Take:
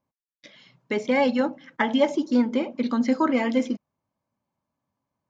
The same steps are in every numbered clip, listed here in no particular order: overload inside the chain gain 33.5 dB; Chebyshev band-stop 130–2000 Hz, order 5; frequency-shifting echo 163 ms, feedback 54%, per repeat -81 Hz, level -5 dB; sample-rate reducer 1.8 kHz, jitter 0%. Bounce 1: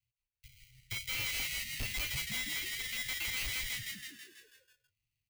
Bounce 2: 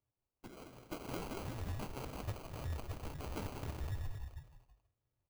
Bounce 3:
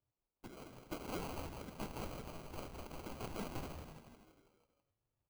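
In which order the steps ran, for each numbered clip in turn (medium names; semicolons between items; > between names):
sample-rate reducer > Chebyshev band-stop > frequency-shifting echo > overload inside the chain; frequency-shifting echo > overload inside the chain > Chebyshev band-stop > sample-rate reducer; overload inside the chain > Chebyshev band-stop > frequency-shifting echo > sample-rate reducer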